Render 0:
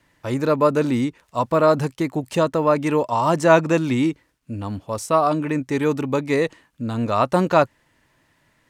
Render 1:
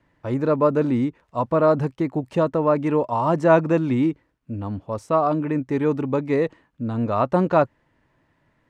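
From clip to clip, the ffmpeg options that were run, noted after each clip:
ffmpeg -i in.wav -af "lowpass=frequency=1100:poles=1" out.wav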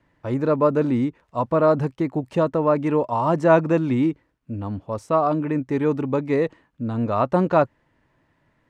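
ffmpeg -i in.wav -af anull out.wav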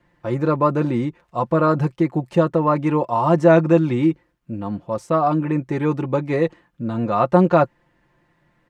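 ffmpeg -i in.wav -af "aecho=1:1:5.7:0.62,volume=1.5dB" out.wav

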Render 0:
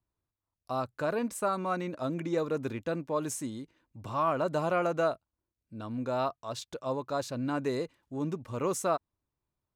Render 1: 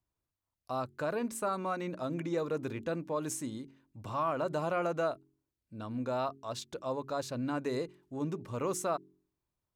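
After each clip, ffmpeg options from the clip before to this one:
ffmpeg -i in.wav -filter_complex "[0:a]bandreject=frequency=45.44:width_type=h:width=4,bandreject=frequency=90.88:width_type=h:width=4,bandreject=frequency=136.32:width_type=h:width=4,bandreject=frequency=181.76:width_type=h:width=4,bandreject=frequency=227.2:width_type=h:width=4,bandreject=frequency=272.64:width_type=h:width=4,bandreject=frequency=318.08:width_type=h:width=4,bandreject=frequency=363.52:width_type=h:width=4,bandreject=frequency=408.96:width_type=h:width=4,asplit=2[link_01][link_02];[link_02]alimiter=level_in=1.5dB:limit=-24dB:level=0:latency=1:release=105,volume=-1.5dB,volume=-0.5dB[link_03];[link_01][link_03]amix=inputs=2:normalize=0,volume=-7dB" out.wav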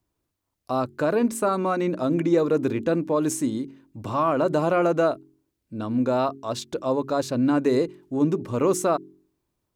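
ffmpeg -i in.wav -af "equalizer=frequency=310:width=0.98:gain=7,volume=8dB" out.wav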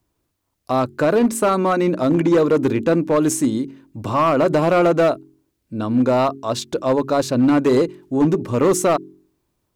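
ffmpeg -i in.wav -af "volume=17dB,asoftclip=hard,volume=-17dB,volume=6.5dB" out.wav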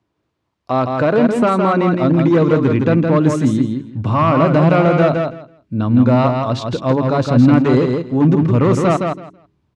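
ffmpeg -i in.wav -af "highpass=110,lowpass=3600,aecho=1:1:164|328|492:0.596|0.101|0.0172,asubboost=boost=6:cutoff=160,volume=2.5dB" out.wav

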